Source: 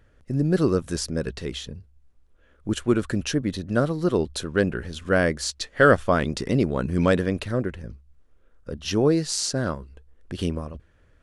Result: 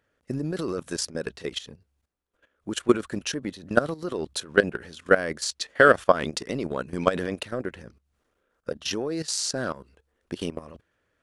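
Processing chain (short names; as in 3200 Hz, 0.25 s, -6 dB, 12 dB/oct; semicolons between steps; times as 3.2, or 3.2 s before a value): HPF 390 Hz 6 dB/oct; transient shaper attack +8 dB, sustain +4 dB; level quantiser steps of 15 dB; gain +1.5 dB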